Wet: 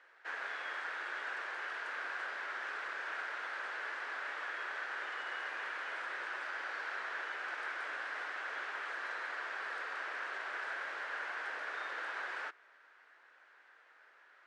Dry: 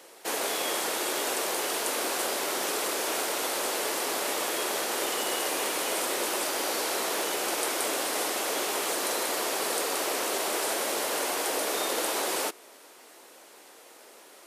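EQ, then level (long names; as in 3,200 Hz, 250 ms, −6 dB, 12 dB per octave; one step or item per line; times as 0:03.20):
resonant band-pass 1,600 Hz, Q 4.4
high-frequency loss of the air 100 metres
+1.5 dB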